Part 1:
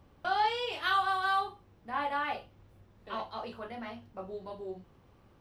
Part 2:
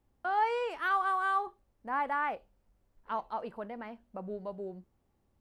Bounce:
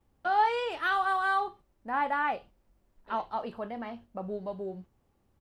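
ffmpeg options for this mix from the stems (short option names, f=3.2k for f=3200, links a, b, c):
-filter_complex "[0:a]lowpass=6.2k,agate=range=-12dB:threshold=-50dB:ratio=16:detection=peak,highpass=52,volume=-5.5dB[a];[1:a]adelay=7.3,volume=2.5dB[b];[a][b]amix=inputs=2:normalize=0"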